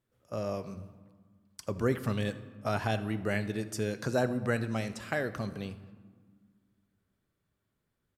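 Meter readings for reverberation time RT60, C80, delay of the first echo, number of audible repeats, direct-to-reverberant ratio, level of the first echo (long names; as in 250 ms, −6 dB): 1.6 s, 14.5 dB, 80 ms, 1, 11.5 dB, −20.0 dB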